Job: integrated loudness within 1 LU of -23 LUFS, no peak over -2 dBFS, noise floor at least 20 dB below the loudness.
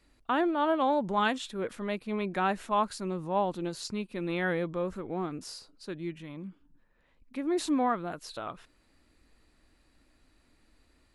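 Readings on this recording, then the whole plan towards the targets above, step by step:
loudness -31.5 LUFS; peak level -15.0 dBFS; loudness target -23.0 LUFS
-> trim +8.5 dB

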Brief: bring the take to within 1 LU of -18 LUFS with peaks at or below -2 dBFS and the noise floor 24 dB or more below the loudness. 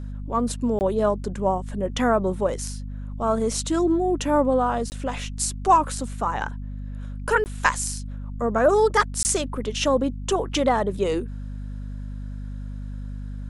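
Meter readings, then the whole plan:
dropouts 4; longest dropout 19 ms; hum 50 Hz; highest harmonic 250 Hz; hum level -30 dBFS; loudness -23.5 LUFS; peak level -4.0 dBFS; loudness target -18.0 LUFS
-> interpolate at 0.79/4.90/7.44/9.23 s, 19 ms; de-hum 50 Hz, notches 5; trim +5.5 dB; peak limiter -2 dBFS

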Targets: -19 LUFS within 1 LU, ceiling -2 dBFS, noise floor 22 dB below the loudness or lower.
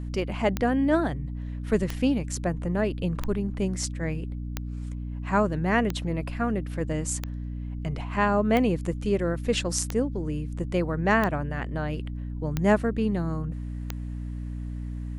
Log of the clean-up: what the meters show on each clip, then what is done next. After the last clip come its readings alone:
clicks found 11; hum 60 Hz; highest harmonic 300 Hz; hum level -31 dBFS; loudness -27.5 LUFS; peak level -8.5 dBFS; loudness target -19.0 LUFS
-> de-click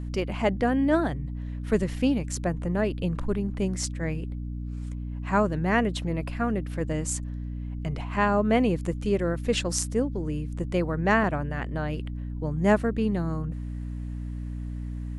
clicks found 0; hum 60 Hz; highest harmonic 300 Hz; hum level -31 dBFS
-> hum notches 60/120/180/240/300 Hz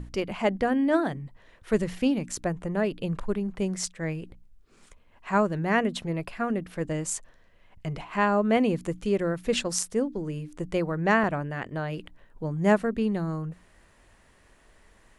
hum not found; loudness -27.5 LUFS; peak level -7.5 dBFS; loudness target -19.0 LUFS
-> trim +8.5 dB; peak limiter -2 dBFS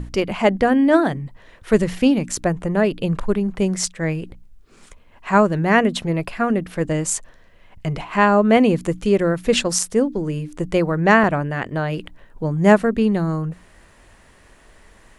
loudness -19.0 LUFS; peak level -2.0 dBFS; noise floor -50 dBFS

